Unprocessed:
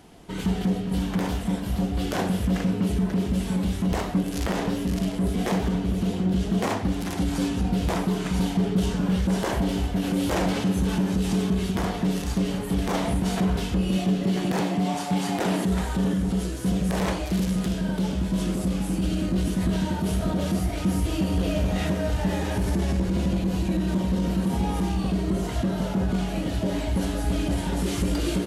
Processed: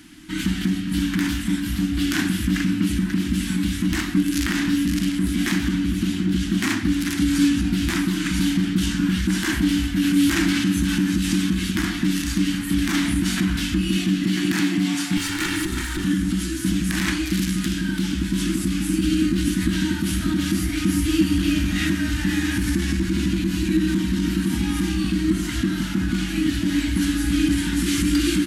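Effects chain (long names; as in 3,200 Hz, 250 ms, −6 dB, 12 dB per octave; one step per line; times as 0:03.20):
0:15.17–0:16.05: lower of the sound and its delayed copy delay 2.2 ms
drawn EQ curve 180 Hz 0 dB, 320 Hz +12 dB, 450 Hz −30 dB, 1,600 Hz +10 dB, 2,900 Hz +8 dB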